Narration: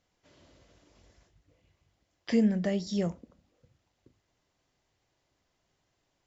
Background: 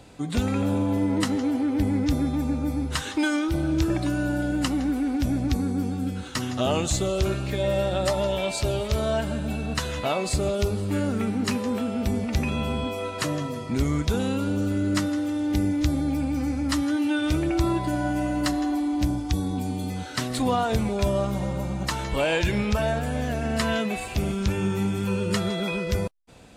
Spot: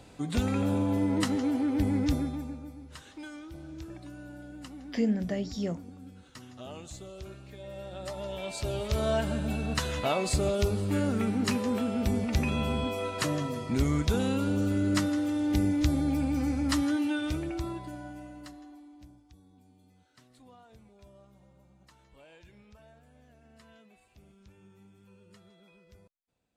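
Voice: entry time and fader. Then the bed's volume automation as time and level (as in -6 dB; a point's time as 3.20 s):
2.65 s, -2.5 dB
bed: 2.11 s -3.5 dB
2.77 s -19.5 dB
7.65 s -19.5 dB
9.09 s -2.5 dB
16.86 s -2.5 dB
19.34 s -32 dB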